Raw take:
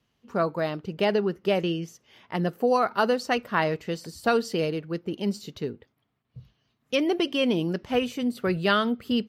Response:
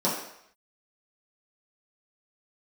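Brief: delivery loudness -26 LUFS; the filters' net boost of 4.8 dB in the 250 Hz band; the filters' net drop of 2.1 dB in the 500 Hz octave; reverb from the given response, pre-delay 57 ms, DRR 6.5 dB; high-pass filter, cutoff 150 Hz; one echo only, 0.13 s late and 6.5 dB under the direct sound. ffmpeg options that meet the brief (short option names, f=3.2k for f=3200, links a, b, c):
-filter_complex "[0:a]highpass=150,equalizer=f=250:t=o:g=8,equalizer=f=500:t=o:g=-5,aecho=1:1:130:0.473,asplit=2[a][b];[1:a]atrim=start_sample=2205,adelay=57[c];[b][c]afir=irnorm=-1:irlink=0,volume=-19dB[d];[a][d]amix=inputs=2:normalize=0,volume=-3dB"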